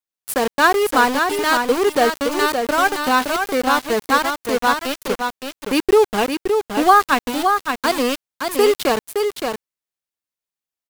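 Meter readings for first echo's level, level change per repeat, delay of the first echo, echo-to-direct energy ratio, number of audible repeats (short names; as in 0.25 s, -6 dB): -5.5 dB, no steady repeat, 0.568 s, -5.5 dB, 1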